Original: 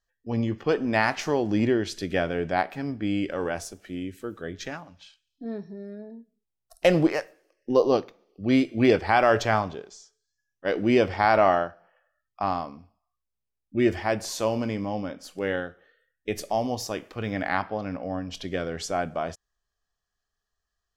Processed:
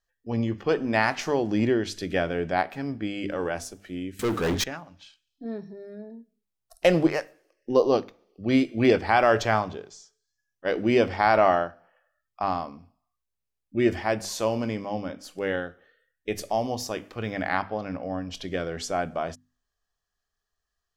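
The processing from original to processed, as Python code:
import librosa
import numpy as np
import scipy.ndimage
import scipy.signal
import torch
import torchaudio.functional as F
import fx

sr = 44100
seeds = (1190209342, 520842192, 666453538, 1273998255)

y = fx.hum_notches(x, sr, base_hz=50, count=6)
y = fx.leveller(y, sr, passes=5, at=(4.19, 4.64))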